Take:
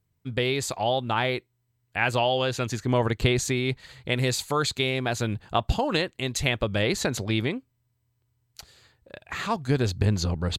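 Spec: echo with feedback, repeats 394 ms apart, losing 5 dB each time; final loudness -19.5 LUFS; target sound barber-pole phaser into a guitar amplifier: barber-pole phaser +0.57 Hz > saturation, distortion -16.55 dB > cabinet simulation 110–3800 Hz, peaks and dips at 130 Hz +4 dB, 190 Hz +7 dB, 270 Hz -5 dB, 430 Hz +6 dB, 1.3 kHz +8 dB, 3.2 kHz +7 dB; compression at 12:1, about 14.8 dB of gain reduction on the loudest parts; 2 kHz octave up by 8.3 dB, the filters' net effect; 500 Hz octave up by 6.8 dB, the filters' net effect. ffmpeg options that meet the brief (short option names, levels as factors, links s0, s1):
-filter_complex "[0:a]equalizer=f=500:t=o:g=4.5,equalizer=f=2000:t=o:g=8,acompressor=threshold=0.0316:ratio=12,aecho=1:1:394|788|1182|1576|1970|2364|2758:0.562|0.315|0.176|0.0988|0.0553|0.031|0.0173,asplit=2[s0][s1];[s1]afreqshift=0.57[s2];[s0][s2]amix=inputs=2:normalize=1,asoftclip=threshold=0.0398,highpass=110,equalizer=f=130:t=q:w=4:g=4,equalizer=f=190:t=q:w=4:g=7,equalizer=f=270:t=q:w=4:g=-5,equalizer=f=430:t=q:w=4:g=6,equalizer=f=1300:t=q:w=4:g=8,equalizer=f=3200:t=q:w=4:g=7,lowpass=f=3800:w=0.5412,lowpass=f=3800:w=1.3066,volume=7.08"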